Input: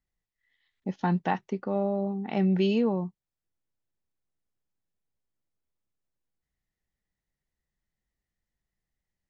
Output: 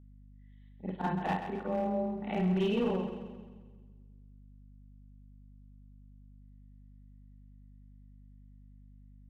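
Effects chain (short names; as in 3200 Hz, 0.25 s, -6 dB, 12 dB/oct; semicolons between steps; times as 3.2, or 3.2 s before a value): short-time reversal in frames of 0.108 s; steep low-pass 3800 Hz 72 dB/oct; bell 66 Hz -12.5 dB 1.1 oct; notches 50/100/150/200/250/300/350/400 Hz; hard clip -24.5 dBFS, distortion -18 dB; split-band echo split 340 Hz, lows 0.172 s, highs 0.132 s, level -9 dB; hum 50 Hz, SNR 17 dB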